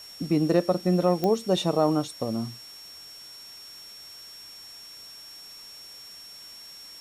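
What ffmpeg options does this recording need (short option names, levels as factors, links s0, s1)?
-af "adeclick=t=4,bandreject=f=5500:w=30,afftdn=nr=25:nf=-45"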